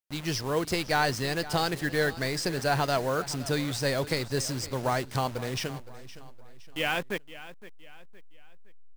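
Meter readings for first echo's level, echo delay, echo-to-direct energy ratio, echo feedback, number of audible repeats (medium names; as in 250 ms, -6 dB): -16.5 dB, 515 ms, -15.5 dB, 40%, 3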